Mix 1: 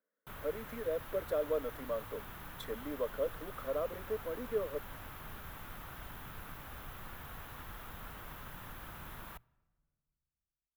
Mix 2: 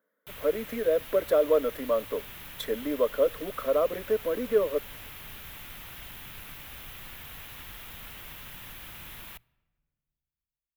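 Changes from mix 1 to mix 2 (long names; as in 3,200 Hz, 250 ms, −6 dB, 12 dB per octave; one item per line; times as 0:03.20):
speech +11.0 dB
background: add high shelf with overshoot 1,800 Hz +8.5 dB, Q 1.5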